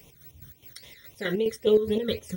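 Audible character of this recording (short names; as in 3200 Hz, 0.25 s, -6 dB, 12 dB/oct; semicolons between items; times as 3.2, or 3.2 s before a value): a quantiser's noise floor 10-bit, dither none; chopped level 4.8 Hz, depth 60%, duty 50%; phasing stages 12, 3.7 Hz, lowest notch 800–1600 Hz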